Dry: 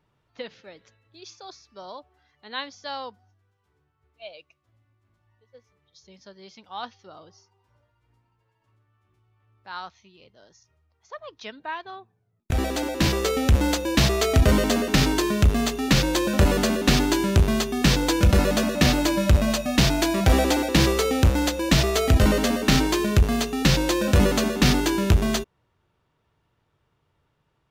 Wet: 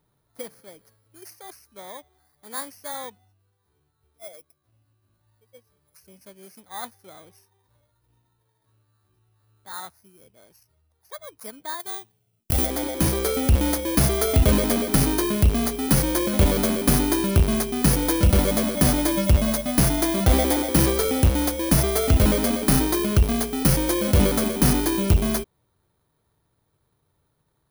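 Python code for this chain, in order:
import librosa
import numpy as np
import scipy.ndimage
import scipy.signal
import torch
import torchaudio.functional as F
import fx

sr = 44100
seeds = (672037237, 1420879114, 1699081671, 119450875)

y = fx.bit_reversed(x, sr, seeds[0], block=16)
y = fx.high_shelf(y, sr, hz=fx.line((11.79, 3100.0), (12.65, 5200.0)), db=11.5, at=(11.79, 12.65), fade=0.02)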